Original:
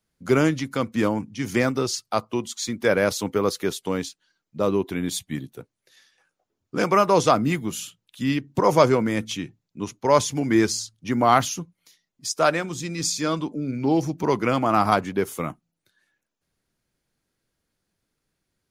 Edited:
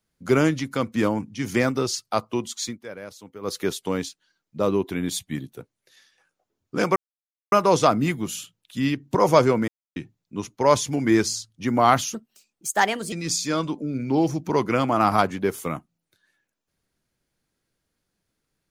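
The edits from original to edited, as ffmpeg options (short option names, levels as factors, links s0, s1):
-filter_complex "[0:a]asplit=8[s0][s1][s2][s3][s4][s5][s6][s7];[s0]atrim=end=2.79,asetpts=PTS-STARTPTS,afade=t=out:st=2.64:d=0.15:silence=0.133352[s8];[s1]atrim=start=2.79:end=3.41,asetpts=PTS-STARTPTS,volume=0.133[s9];[s2]atrim=start=3.41:end=6.96,asetpts=PTS-STARTPTS,afade=t=in:d=0.15:silence=0.133352,afade=t=out:st=3.546:d=0.004:c=hsin,apad=pad_dur=0.56[s10];[s3]atrim=start=6.96:end=9.12,asetpts=PTS-STARTPTS,afade=t=in:d=0.004:c=hsin,afade=t=out:st=2.156:d=0.004:c=hsin[s11];[s4]atrim=start=9.12:end=9.4,asetpts=PTS-STARTPTS,volume=0[s12];[s5]atrim=start=9.4:end=11.584,asetpts=PTS-STARTPTS,afade=t=in:d=0.004:c=hsin[s13];[s6]atrim=start=11.58:end=12.86,asetpts=PTS-STARTPTS,asetrate=57330,aresample=44100[s14];[s7]atrim=start=12.856[s15];[s8][s9][s10][s11][s12][s13]concat=n=6:v=0:a=1[s16];[s16][s14]acrossfade=d=0.004:c1=hsin:c2=hsin[s17];[s17][s15]acrossfade=d=0.004:c1=hsin:c2=hsin"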